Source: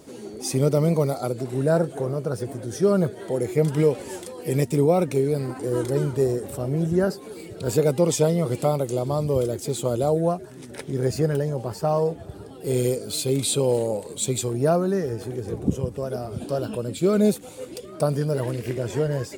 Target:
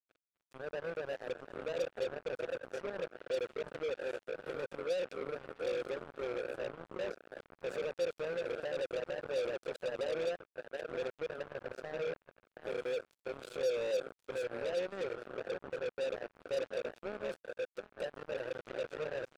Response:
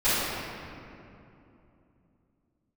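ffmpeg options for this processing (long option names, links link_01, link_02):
-filter_complex "[0:a]asettb=1/sr,asplit=3[link_01][link_02][link_03];[link_01]atrim=end=11.424[link_04];[link_02]atrim=start=11.42:end=12.13,asetpts=PTS-STARTPTS,afade=type=in:duration=0.004:curve=qsin,afade=type=out:start_time=0.706:duration=0.004:curve=qsin,bass=frequency=250:gain=8,treble=frequency=4000:gain=2[link_05];[link_03]atrim=start=12.126[link_06];[link_04][link_05]acrossfade=duration=0.004:curve1=hsin:curve2=qsin[link_07];[link_07][link_06]acrossfade=duration=0.004:curve1=qsin:curve2=hsin,alimiter=limit=-20dB:level=0:latency=1:release=15,asplit=3[link_08][link_09][link_10];[link_08]bandpass=frequency=530:width_type=q:width=8,volume=0dB[link_11];[link_09]bandpass=frequency=1840:width_type=q:width=8,volume=-6dB[link_12];[link_10]bandpass=frequency=2480:width_type=q:width=8,volume=-9dB[link_13];[link_11][link_12][link_13]amix=inputs=3:normalize=0,asplit=2[link_14][link_15];[link_15]adelay=723,lowpass=frequency=1200:poles=1,volume=-5dB,asplit=2[link_16][link_17];[link_17]adelay=723,lowpass=frequency=1200:poles=1,volume=0.37,asplit=2[link_18][link_19];[link_19]adelay=723,lowpass=frequency=1200:poles=1,volume=0.37,asplit=2[link_20][link_21];[link_21]adelay=723,lowpass=frequency=1200:poles=1,volume=0.37,asplit=2[link_22][link_23];[link_23]adelay=723,lowpass=frequency=1200:poles=1,volume=0.37[link_24];[link_16][link_18][link_20][link_22][link_24]amix=inputs=5:normalize=0[link_25];[link_14][link_25]amix=inputs=2:normalize=0,acrusher=bits=5:mix=0:aa=0.5,volume=-2dB"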